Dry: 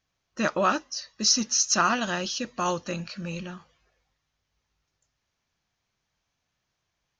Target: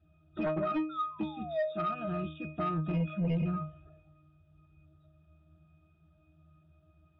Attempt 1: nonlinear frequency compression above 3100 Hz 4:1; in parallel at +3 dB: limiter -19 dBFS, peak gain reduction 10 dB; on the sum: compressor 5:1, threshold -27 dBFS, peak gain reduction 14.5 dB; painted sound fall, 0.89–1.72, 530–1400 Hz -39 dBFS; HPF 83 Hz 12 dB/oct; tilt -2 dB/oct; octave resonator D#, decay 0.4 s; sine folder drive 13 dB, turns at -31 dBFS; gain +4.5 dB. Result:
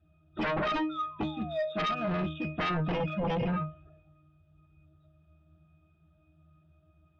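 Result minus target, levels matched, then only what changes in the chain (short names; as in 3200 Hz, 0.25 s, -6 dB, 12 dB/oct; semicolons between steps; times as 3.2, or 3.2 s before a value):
compressor: peak gain reduction -7 dB
change: compressor 5:1, threshold -35.5 dBFS, peak gain reduction 21 dB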